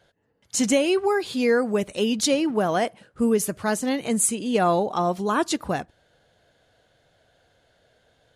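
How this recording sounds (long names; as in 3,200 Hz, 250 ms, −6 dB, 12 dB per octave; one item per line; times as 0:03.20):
background noise floor −65 dBFS
spectral slope −3.5 dB per octave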